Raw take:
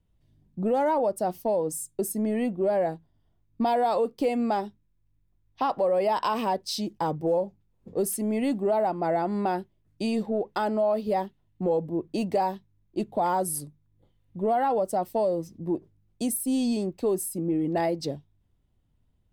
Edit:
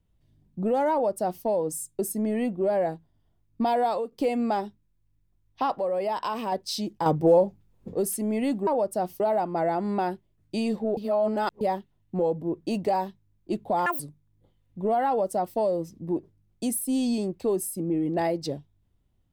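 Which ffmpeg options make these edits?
ffmpeg -i in.wav -filter_complex "[0:a]asplit=12[link_01][link_02][link_03][link_04][link_05][link_06][link_07][link_08][link_09][link_10][link_11][link_12];[link_01]atrim=end=4.12,asetpts=PTS-STARTPTS,afade=type=out:start_time=3.85:duration=0.27:silence=0.266073[link_13];[link_02]atrim=start=4.12:end=5.762,asetpts=PTS-STARTPTS,afade=type=in:duration=0.004:curve=hsin:silence=0.266073[link_14];[link_03]atrim=start=5.758:end=6.522,asetpts=PTS-STARTPTS,volume=-3.5dB[link_15];[link_04]atrim=start=6.518:end=7.062[link_16];[link_05]atrim=start=7.058:end=7.952,asetpts=PTS-STARTPTS,volume=6.5dB[link_17];[link_06]atrim=start=7.948:end=8.672[link_18];[link_07]atrim=start=0.918:end=1.452[link_19];[link_08]atrim=start=8.668:end=10.442[link_20];[link_09]atrim=start=10.438:end=11.082,asetpts=PTS-STARTPTS,areverse[link_21];[link_10]atrim=start=11.078:end=13.334[link_22];[link_11]atrim=start=13.33:end=13.58,asetpts=PTS-STARTPTS,asetrate=82026,aresample=44100,atrim=end_sample=5927,asetpts=PTS-STARTPTS[link_23];[link_12]atrim=start=13.576[link_24];[link_13][link_14]concat=n=2:v=0:a=1[link_25];[link_25][link_15]acrossfade=duration=0.004:curve1=hsin:curve2=hsin[link_26];[link_26][link_16]acrossfade=duration=0.004:curve1=hsin:curve2=hsin[link_27];[link_27][link_17]acrossfade=duration=0.004:curve1=hsin:curve2=hsin[link_28];[link_28][link_18]acrossfade=duration=0.004:curve1=hsin:curve2=hsin[link_29];[link_29][link_19]acrossfade=duration=0.004:curve1=hsin:curve2=hsin[link_30];[link_30][link_20]acrossfade=duration=0.004:curve1=hsin:curve2=hsin[link_31];[link_31][link_21]acrossfade=duration=0.004:curve1=hsin:curve2=hsin[link_32];[link_32][link_22]acrossfade=duration=0.004:curve1=hsin:curve2=hsin[link_33];[link_33][link_23]acrossfade=duration=0.004:curve1=hsin:curve2=hsin[link_34];[link_34][link_24]acrossfade=duration=0.004:curve1=hsin:curve2=hsin" out.wav

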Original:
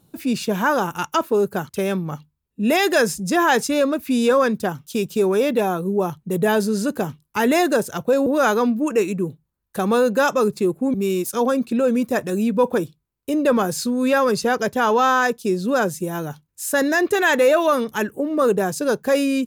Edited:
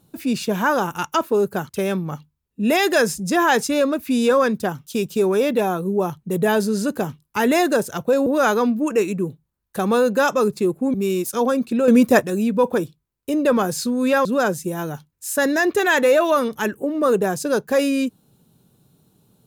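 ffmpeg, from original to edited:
ffmpeg -i in.wav -filter_complex "[0:a]asplit=4[link_01][link_02][link_03][link_04];[link_01]atrim=end=11.882[link_05];[link_02]atrim=start=11.878:end=12.212,asetpts=PTS-STARTPTS,volume=7dB[link_06];[link_03]atrim=start=12.208:end=14.252[link_07];[link_04]atrim=start=15.608[link_08];[link_05][link_06]acrossfade=duration=0.004:curve1=hsin:curve2=hsin[link_09];[link_09][link_07]acrossfade=duration=0.004:curve1=hsin:curve2=hsin[link_10];[link_10][link_08]acrossfade=duration=0.004:curve1=hsin:curve2=hsin" out.wav

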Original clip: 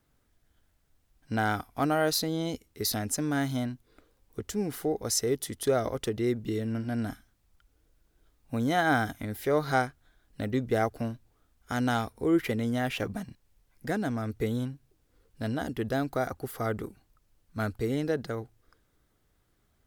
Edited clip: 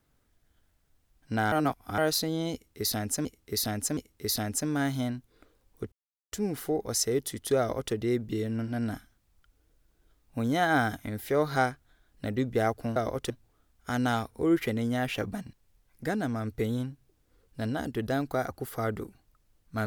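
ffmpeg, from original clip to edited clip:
ffmpeg -i in.wav -filter_complex "[0:a]asplit=8[link_01][link_02][link_03][link_04][link_05][link_06][link_07][link_08];[link_01]atrim=end=1.522[link_09];[link_02]atrim=start=1.518:end=1.982,asetpts=PTS-STARTPTS,areverse[link_10];[link_03]atrim=start=1.978:end=3.252[link_11];[link_04]atrim=start=2.528:end=3.252[link_12];[link_05]atrim=start=2.528:end=4.48,asetpts=PTS-STARTPTS,afade=type=out:start_time=1.948:duration=0.004:curve=hsin,apad=pad_dur=0.4[link_13];[link_06]atrim=start=4.48:end=11.122,asetpts=PTS-STARTPTS,afade=type=in:duration=0.004:curve=hsin[link_14];[link_07]atrim=start=5.748:end=6.092[link_15];[link_08]atrim=start=11.118[link_16];[link_09][link_10]acrossfade=duration=0.004:curve1=hsin:curve2=hsin[link_17];[link_17][link_11]acrossfade=duration=0.004:curve1=hsin:curve2=hsin[link_18];[link_18][link_12]acrossfade=duration=0.004:curve1=hsin:curve2=hsin[link_19];[link_13][link_14]concat=n=2:v=0:a=1[link_20];[link_19][link_20]acrossfade=duration=0.004:curve1=hsin:curve2=hsin[link_21];[link_21][link_15]acrossfade=duration=0.004:curve1=hsin:curve2=hsin[link_22];[link_22][link_16]acrossfade=duration=0.004:curve1=hsin:curve2=hsin" out.wav

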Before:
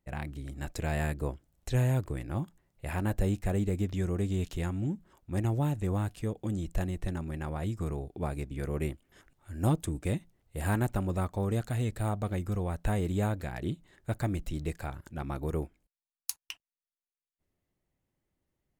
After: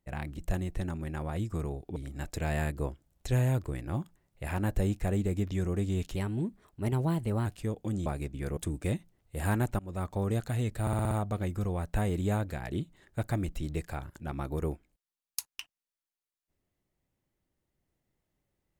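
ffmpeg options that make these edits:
ffmpeg -i in.wav -filter_complex "[0:a]asplit=13[link_01][link_02][link_03][link_04][link_05][link_06][link_07][link_08][link_09][link_10][link_11][link_12][link_13];[link_01]atrim=end=0.382[link_14];[link_02]atrim=start=6.648:end=8.232[link_15];[link_03]atrim=start=0.378:end=4.584[link_16];[link_04]atrim=start=4.58:end=6.05,asetpts=PTS-STARTPTS,asetrate=49833,aresample=44100,atrim=end_sample=57369,asetpts=PTS-STARTPTS[link_17];[link_05]atrim=start=6.046:end=6.652[link_18];[link_06]atrim=start=8.228:end=8.742[link_19];[link_07]atrim=start=9.778:end=11,asetpts=PTS-STARTPTS,afade=type=out:start_time=1.218:duration=0.004:curve=hsin:silence=0.0668344[link_20];[link_08]atrim=start=11:end=12.082,asetpts=PTS-STARTPTS,afade=type=in:duration=0.32:silence=0.0668344[link_21];[link_09]atrim=start=12.018:end=12.082[link_22];[link_10]atrim=start=12.018:end=12.082[link_23];[link_11]atrim=start=12.018:end=12.082[link_24];[link_12]atrim=start=12.018:end=12.082[link_25];[link_13]atrim=start=12.018[link_26];[link_14][link_15]acrossfade=duration=0.004:curve1=hsin:curve2=hsin[link_27];[link_27][link_16]acrossfade=duration=0.004:curve1=hsin:curve2=hsin[link_28];[link_28][link_17]acrossfade=duration=0.004:curve1=hsin:curve2=hsin[link_29];[link_29][link_18]acrossfade=duration=0.004:curve1=hsin:curve2=hsin[link_30];[link_30][link_19]acrossfade=duration=0.004:curve1=hsin:curve2=hsin[link_31];[link_20][link_21]concat=n=2:v=0:a=1[link_32];[link_31][link_32]acrossfade=duration=0.004:curve1=hsin:curve2=hsin[link_33];[link_33][link_22]acrossfade=duration=0.004:curve1=hsin:curve2=hsin[link_34];[link_34][link_23]acrossfade=duration=0.004:curve1=hsin:curve2=hsin[link_35];[link_35][link_24]acrossfade=duration=0.004:curve1=hsin:curve2=hsin[link_36];[link_36][link_25]acrossfade=duration=0.004:curve1=hsin:curve2=hsin[link_37];[link_37][link_26]acrossfade=duration=0.004:curve1=hsin:curve2=hsin" out.wav

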